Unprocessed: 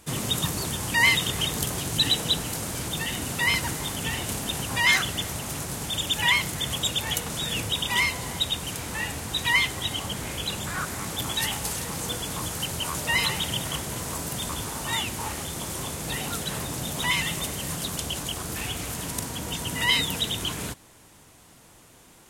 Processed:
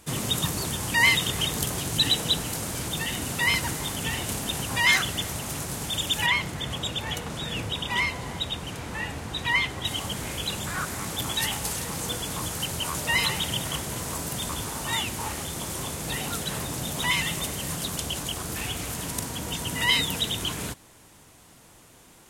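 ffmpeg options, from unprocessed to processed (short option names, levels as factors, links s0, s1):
-filter_complex "[0:a]asettb=1/sr,asplit=3[s0][s1][s2];[s0]atrim=end=6.264[s3];[s1]atrim=start=6.26:end=9.85,asetpts=PTS-STARTPTS,afade=t=in:d=0.004:c=qsin,afade=t=out:st=3.586:d=0.004:c=qsin,lowpass=f=2700:p=1[s4];[s2]atrim=start=9.846[s5];[s3][s4]acrossfade=d=0.004:c1=hsin:c2=qsin[s6];[s6][s5]acrossfade=d=0.004:c1=qsin:c2=hsin"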